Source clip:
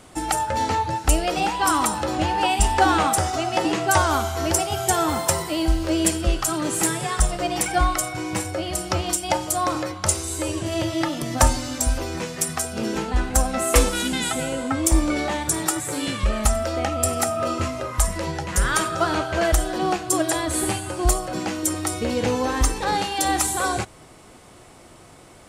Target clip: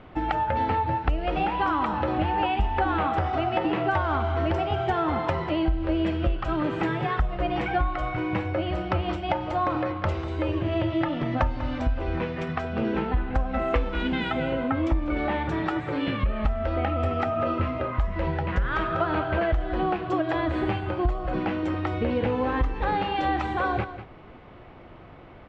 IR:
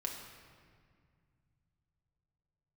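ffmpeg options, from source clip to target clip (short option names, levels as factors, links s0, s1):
-af "lowpass=f=3100:w=0.5412,lowpass=f=3100:w=1.3066,lowshelf=f=77:g=6,aecho=1:1:194:0.188,acompressor=threshold=0.0891:ratio=6,aemphasis=mode=reproduction:type=cd"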